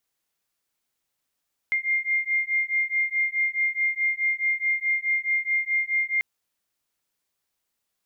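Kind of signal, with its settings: beating tones 2.11 kHz, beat 4.7 Hz, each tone -25 dBFS 4.49 s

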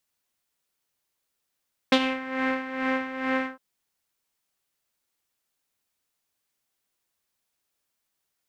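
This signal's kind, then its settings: synth patch with tremolo C5, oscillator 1 saw, oscillator 2 saw, sub -1.5 dB, noise -5.5 dB, filter lowpass, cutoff 1.3 kHz, Q 2.9, filter envelope 1.5 oct, attack 4 ms, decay 0.06 s, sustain -13.5 dB, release 0.12 s, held 1.54 s, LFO 2.3 Hz, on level 11 dB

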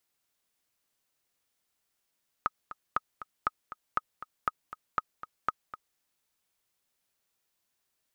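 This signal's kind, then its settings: metronome 238 bpm, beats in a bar 2, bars 7, 1.26 kHz, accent 14 dB -13 dBFS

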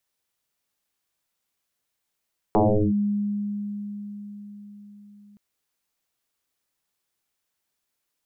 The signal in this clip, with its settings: FM tone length 2.82 s, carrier 205 Hz, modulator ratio 0.52, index 7, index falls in 0.38 s linear, decay 4.96 s, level -14.5 dB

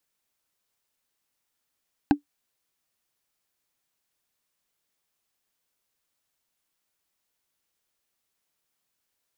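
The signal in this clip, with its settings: wood hit, lowest mode 290 Hz, decay 0.11 s, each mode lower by 5 dB, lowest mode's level -10 dB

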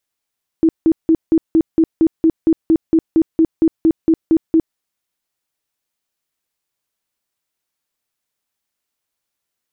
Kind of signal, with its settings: tone bursts 324 Hz, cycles 19, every 0.23 s, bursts 18, -8 dBFS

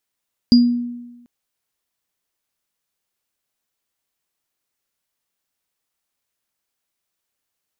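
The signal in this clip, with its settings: sine partials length 0.74 s, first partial 241 Hz, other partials 4.84 kHz, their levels -8.5 dB, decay 1.09 s, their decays 0.28 s, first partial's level -5.5 dB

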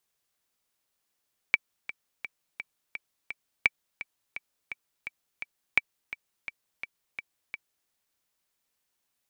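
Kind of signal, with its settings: metronome 170 bpm, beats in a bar 6, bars 3, 2.31 kHz, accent 15.5 dB -6.5 dBFS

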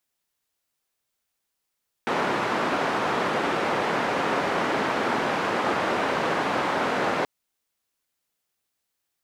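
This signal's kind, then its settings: noise band 210–1200 Hz, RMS -25 dBFS 5.18 s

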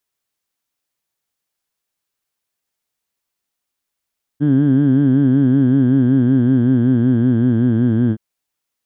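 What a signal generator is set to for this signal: formant vowel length 3.77 s, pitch 141 Hz, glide -3.5 st, vibrato depth 1.1 st, F1 270 Hz, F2 1.6 kHz, F3 3.2 kHz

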